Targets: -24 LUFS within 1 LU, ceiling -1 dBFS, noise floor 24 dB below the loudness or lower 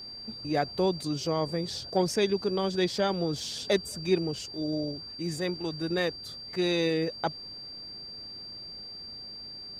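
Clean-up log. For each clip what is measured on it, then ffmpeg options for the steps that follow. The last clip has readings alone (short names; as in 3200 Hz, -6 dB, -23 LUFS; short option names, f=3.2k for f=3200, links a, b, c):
steady tone 4700 Hz; tone level -40 dBFS; loudness -31.0 LUFS; peak -12.0 dBFS; loudness target -24.0 LUFS
-> -af "bandreject=f=4.7k:w=30"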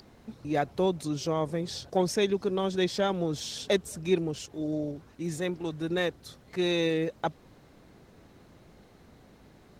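steady tone none; loudness -30.0 LUFS; peak -12.5 dBFS; loudness target -24.0 LUFS
-> -af "volume=6dB"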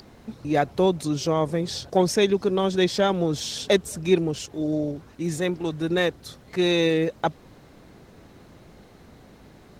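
loudness -24.0 LUFS; peak -6.5 dBFS; noise floor -51 dBFS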